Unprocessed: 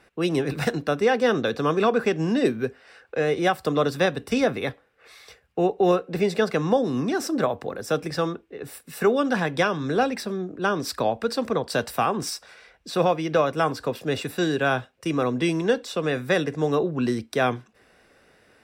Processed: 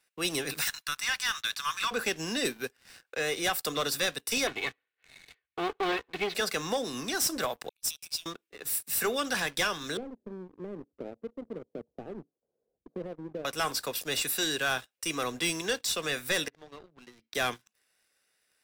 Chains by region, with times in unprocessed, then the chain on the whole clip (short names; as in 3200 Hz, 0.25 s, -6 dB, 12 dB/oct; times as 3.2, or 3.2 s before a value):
0.61–1.91 steep high-pass 930 Hz 48 dB/oct + de-esser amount 70%
4.47–6.35 minimum comb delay 0.47 ms + LPF 3400 Hz 24 dB/oct + comb 2.7 ms, depth 46%
7.69–8.26 compressor 2.5:1, threshold -33 dBFS + brick-wall FIR high-pass 2200 Hz + three-band expander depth 70%
9.97–13.45 inverse Chebyshev low-pass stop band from 2600 Hz, stop band 80 dB + three-band squash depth 70%
16.48–17.35 compressor 3:1, threshold -36 dBFS + air absorption 270 m
whole clip: differentiator; sample leveller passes 3; low shelf 290 Hz +9.5 dB